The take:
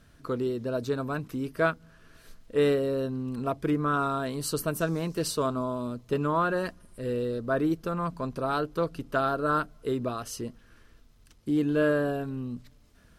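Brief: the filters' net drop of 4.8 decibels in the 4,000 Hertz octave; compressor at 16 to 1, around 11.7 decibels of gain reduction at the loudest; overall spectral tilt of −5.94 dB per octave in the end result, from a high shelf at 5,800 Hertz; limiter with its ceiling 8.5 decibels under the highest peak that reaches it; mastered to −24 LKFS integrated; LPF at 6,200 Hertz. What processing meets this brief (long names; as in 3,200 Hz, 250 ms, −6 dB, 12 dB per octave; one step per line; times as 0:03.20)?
low-pass filter 6,200 Hz
parametric band 4,000 Hz −8 dB
high-shelf EQ 5,800 Hz +7.5 dB
downward compressor 16 to 1, threshold −31 dBFS
level +15.5 dB
brickwall limiter −15 dBFS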